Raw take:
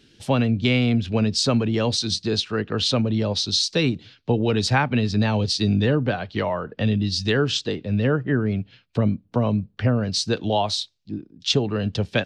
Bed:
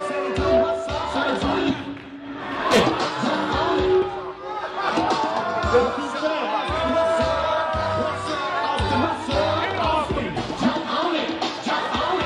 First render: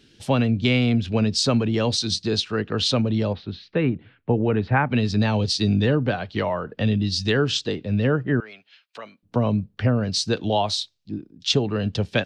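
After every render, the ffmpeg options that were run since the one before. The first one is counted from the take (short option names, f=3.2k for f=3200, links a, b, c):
-filter_complex "[0:a]asettb=1/sr,asplit=3[a][b][c];[a]atrim=end=3.334[d];[b]atrim=start=3.33:end=4.9,asetpts=PTS-STARTPTS,afade=t=in:d=0.004:c=qsin,afade=t=out:st=1.566:d=0.004:c=qsin,lowpass=f=2.2k:w=0.5412,lowpass=f=2.2k:w=1.3066[e];[c]atrim=start=4.896[f];[d][e]acrossfade=d=0.004:c1=hsin:c2=qsin[g];[g][f]acrossfade=d=0.004:c1=qsin:c2=hsin,asettb=1/sr,asplit=3[h][i][j];[h]atrim=end=8.404[k];[i]atrim=start=8.4:end=9.23,asetpts=PTS-STARTPTS,afade=t=in:d=0.004:c=qsin,afade=t=out:st=0.826:d=0.004:c=qsin,highpass=1.1k[l];[j]atrim=start=9.226[m];[k][l]acrossfade=d=0.004:c1=hsin:c2=qsin[n];[n][m]acrossfade=d=0.004:c1=qsin:c2=hsin"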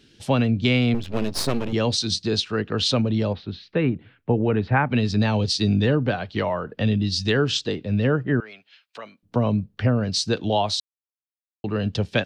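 -filter_complex "[0:a]asettb=1/sr,asplit=3[a][b][c];[a]atrim=end=0.944[d];[b]atrim=start=0.94:end=1.73,asetpts=PTS-STARTPTS,afade=t=in:d=0.004:c=qsin,afade=t=out:st=0.786:d=0.004:c=qsin,aeval=exprs='max(val(0),0)':c=same[e];[c]atrim=start=1.726[f];[d][e]acrossfade=d=0.004:c1=hsin:c2=qsin[g];[g][f]acrossfade=d=0.004:c1=qsin:c2=hsin,asplit=3[h][i][j];[h]atrim=end=10.8,asetpts=PTS-STARTPTS,afade=t=out:st=10.796:d=0.004:c=hsin[k];[i]atrim=start=10.8:end=11.64,asetpts=PTS-STARTPTS,volume=0[l];[j]atrim=start=11.64,asetpts=PTS-STARTPTS,afade=t=in:d=0.004:c=hsin[m];[k][l][m]concat=n=3:v=0:a=1"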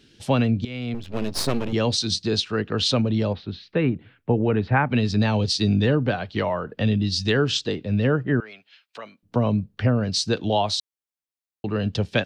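-filter_complex "[0:a]asplit=2[a][b];[a]atrim=end=0.65,asetpts=PTS-STARTPTS,afade=t=out:st=0.646:d=0.004:c=hsin:silence=0.105925[c];[b]atrim=start=0.65,asetpts=PTS-STARTPTS,afade=t=in:d=0.74:silence=0.105925[d];[c][d]concat=n=2:v=0:a=1"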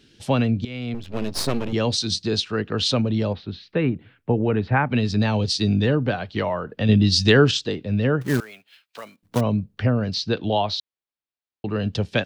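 -filter_complex "[0:a]asettb=1/sr,asplit=3[a][b][c];[a]atrim=end=8.214[d];[b]atrim=start=8.21:end=9.41,asetpts=PTS-STARTPTS,afade=t=in:d=0.004:c=qsin,afade=t=out:st=1.196:d=0.004:c=qsin,acrusher=bits=3:mode=log:mix=0:aa=0.000001[e];[c]atrim=start=9.406[f];[d][e]acrossfade=d=0.004:c1=hsin:c2=qsin[g];[g][f]acrossfade=d=0.004:c1=qsin:c2=hsin,asettb=1/sr,asplit=3[h][i][j];[h]atrim=end=10.144[k];[i]atrim=start=10.14:end=11.69,asetpts=PTS-STARTPTS,afade=t=in:d=0.004:c=qsin,afade=t=out:st=1.546:d=0.004:c=qsin,lowpass=f=4.7k:w=0.5412,lowpass=f=4.7k:w=1.3066[l];[j]atrim=start=11.686[m];[k][l]acrossfade=d=0.004:c1=hsin:c2=qsin[n];[n][m]acrossfade=d=0.004:c1=qsin:c2=hsin,asplit=3[o][p][q];[o]atrim=end=6.892[r];[p]atrim=start=6.888:end=7.512,asetpts=PTS-STARTPTS,volume=6dB[s];[q]atrim=start=7.508[t];[r][s]acrossfade=d=0.004:c1=hsin:c2=hsin[u];[u][t]acrossfade=d=0.004:c1=hsin:c2=hsin"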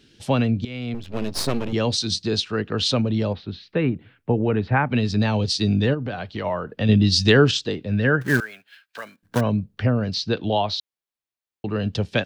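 -filter_complex "[0:a]asplit=3[a][b][c];[a]afade=t=out:st=5.93:d=0.02[d];[b]acompressor=threshold=-25dB:ratio=3:attack=3.2:release=140:knee=1:detection=peak,afade=t=in:st=5.93:d=0.02,afade=t=out:st=6.44:d=0.02[e];[c]afade=t=in:st=6.44:d=0.02[f];[d][e][f]amix=inputs=3:normalize=0,asettb=1/sr,asplit=3[g][h][i];[g]atrim=end=7.914[j];[h]atrim=start=7.91:end=9.51,asetpts=PTS-STARTPTS,afade=t=in:d=0.004:c=qsin,afade=t=out:st=1.596:d=0.004:c=qsin,equalizer=f=1.6k:t=o:w=0.29:g=13.5[k];[i]atrim=start=9.506[l];[j][k]acrossfade=d=0.004:c1=hsin:c2=qsin[m];[m][l]acrossfade=d=0.004:c1=qsin:c2=hsin"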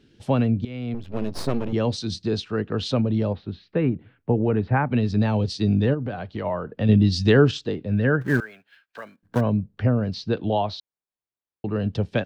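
-af "highshelf=f=2k:g=-11.5"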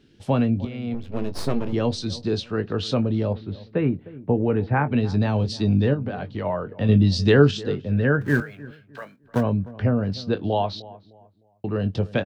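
-filter_complex "[0:a]asplit=2[a][b];[b]adelay=21,volume=-11dB[c];[a][c]amix=inputs=2:normalize=0,asplit=2[d][e];[e]adelay=305,lowpass=f=1.2k:p=1,volume=-18dB,asplit=2[f][g];[g]adelay=305,lowpass=f=1.2k:p=1,volume=0.33,asplit=2[h][i];[i]adelay=305,lowpass=f=1.2k:p=1,volume=0.33[j];[d][f][h][j]amix=inputs=4:normalize=0"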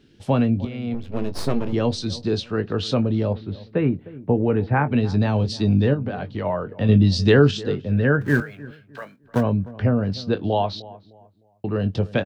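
-af "volume=1.5dB,alimiter=limit=-3dB:level=0:latency=1"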